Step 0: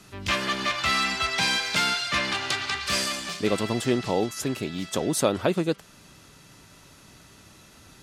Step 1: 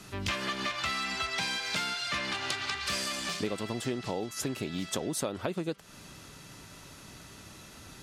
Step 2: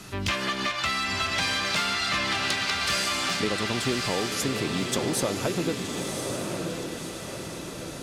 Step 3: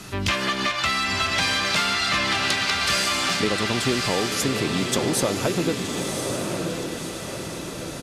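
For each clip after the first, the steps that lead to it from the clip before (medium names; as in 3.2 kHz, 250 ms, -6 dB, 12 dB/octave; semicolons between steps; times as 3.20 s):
compression 6:1, threshold -32 dBFS, peak gain reduction 14.5 dB; trim +2 dB
on a send: echo that smears into a reverb 1088 ms, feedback 50%, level -4 dB; on the sum: saturation -19 dBFS, distortion -25 dB; trim +5.5 dB
resampled via 32 kHz; trim +4 dB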